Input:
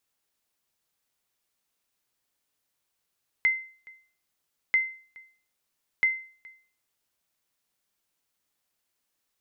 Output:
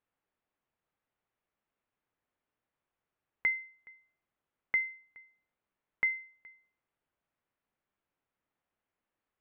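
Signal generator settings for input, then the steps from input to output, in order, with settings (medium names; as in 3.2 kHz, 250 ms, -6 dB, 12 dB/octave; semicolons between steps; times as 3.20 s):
sonar ping 2.07 kHz, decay 0.43 s, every 1.29 s, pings 3, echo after 0.42 s, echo -25 dB -15.5 dBFS
Gaussian low-pass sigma 3.6 samples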